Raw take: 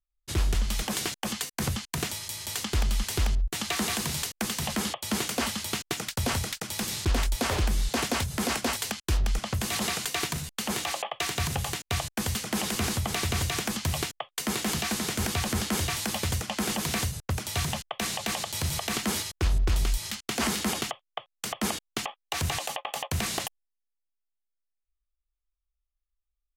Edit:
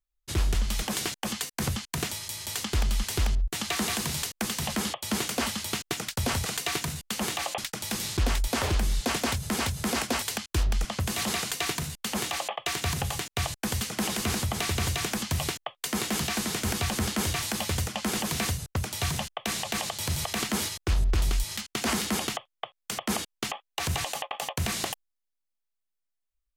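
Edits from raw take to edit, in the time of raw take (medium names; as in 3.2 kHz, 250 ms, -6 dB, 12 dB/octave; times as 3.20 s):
8.13–8.47 s: loop, 2 plays
9.94–11.06 s: copy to 6.46 s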